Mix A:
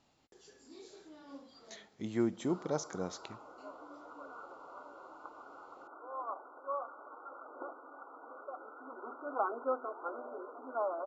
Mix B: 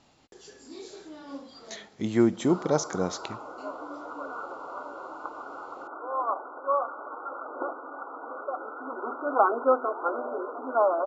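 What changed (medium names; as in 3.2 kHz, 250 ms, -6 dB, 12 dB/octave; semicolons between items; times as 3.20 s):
speech +10.0 dB; background +12.0 dB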